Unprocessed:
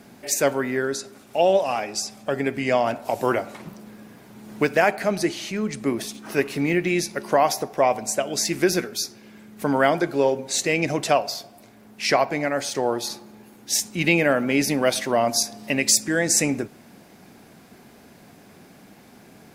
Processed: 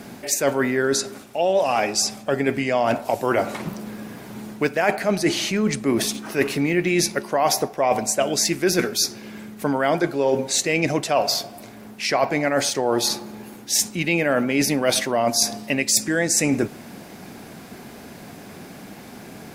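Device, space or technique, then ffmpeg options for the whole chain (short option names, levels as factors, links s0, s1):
compression on the reversed sound: -af "areverse,acompressor=threshold=0.0501:ratio=6,areverse,volume=2.82"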